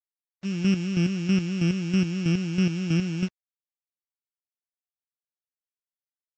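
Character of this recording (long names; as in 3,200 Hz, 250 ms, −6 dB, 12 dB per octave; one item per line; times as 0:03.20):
a buzz of ramps at a fixed pitch in blocks of 16 samples
chopped level 3.1 Hz, depth 60%, duty 30%
a quantiser's noise floor 8 bits, dither none
Ogg Vorbis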